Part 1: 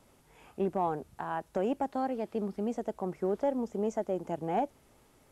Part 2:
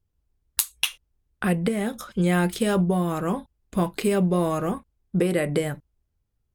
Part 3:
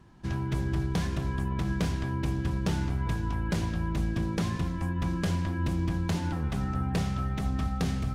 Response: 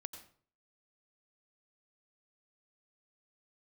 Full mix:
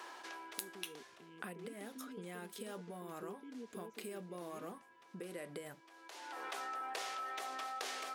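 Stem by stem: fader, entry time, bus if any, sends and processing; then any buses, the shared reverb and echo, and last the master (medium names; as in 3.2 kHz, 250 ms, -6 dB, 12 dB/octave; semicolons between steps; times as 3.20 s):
-8.5 dB, 0.00 s, bus A, no send, low-pass 4.1 kHz 12 dB/octave; FFT band-reject 490–2000 Hz
-12.5 dB, 0.00 s, bus A, no send, treble shelf 10 kHz +6.5 dB
-5.5 dB, 0.00 s, no bus, no send, Bessel high-pass 640 Hz, order 8; level flattener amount 70%; auto duck -21 dB, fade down 1.35 s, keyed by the second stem
bus A: 0.0 dB, compression 10:1, threshold -40 dBFS, peak gain reduction 15 dB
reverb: none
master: Bessel high-pass 310 Hz, order 2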